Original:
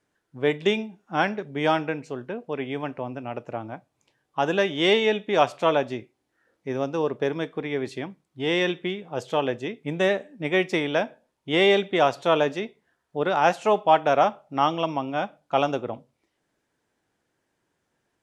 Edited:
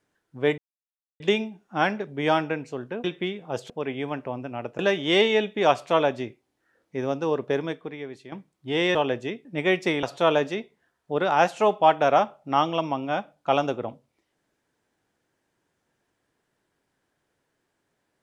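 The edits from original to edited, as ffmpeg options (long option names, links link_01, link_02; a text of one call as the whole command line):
ffmpeg -i in.wav -filter_complex "[0:a]asplit=9[link_01][link_02][link_03][link_04][link_05][link_06][link_07][link_08][link_09];[link_01]atrim=end=0.58,asetpts=PTS-STARTPTS,afade=type=out:start_time=0.576:duration=0.004:curve=hsin,apad=pad_dur=0.62[link_10];[link_02]atrim=start=0.58:end=2.422,asetpts=PTS-STARTPTS,afade=type=in:duration=0.004:curve=hsin[link_11];[link_03]atrim=start=8.668:end=9.332[link_12];[link_04]atrim=start=2.418:end=3.512[link_13];[link_05]atrim=start=4.508:end=8.04,asetpts=PTS-STARTPTS,afade=type=out:start_time=2.832:duration=0.7:curve=qua:silence=0.251189[link_14];[link_06]atrim=start=8.04:end=8.672,asetpts=PTS-STARTPTS,afade=type=in:duration=0.004:curve=hsin:silence=0.251189[link_15];[link_07]atrim=start=9.328:end=9.832[link_16];[link_08]atrim=start=10.318:end=10.902[link_17];[link_09]atrim=start=12.078[link_18];[link_10][link_11]concat=n=2:v=0:a=1[link_19];[link_19][link_12]acrossfade=duration=0.004:curve1=hsin:curve2=hsin[link_20];[link_20][link_13]acrossfade=duration=0.004:curve1=hsin:curve2=hsin[link_21];[link_14][link_15]concat=n=2:v=0:a=1[link_22];[link_21][link_22]acrossfade=duration=0.004:curve1=hsin:curve2=hsin[link_23];[link_23][link_16]acrossfade=duration=0.004:curve1=hsin:curve2=hsin[link_24];[link_24][link_17]acrossfade=duration=0.004:curve1=hsin:curve2=hsin[link_25];[link_25][link_18]acrossfade=duration=0.004:curve1=hsin:curve2=hsin" out.wav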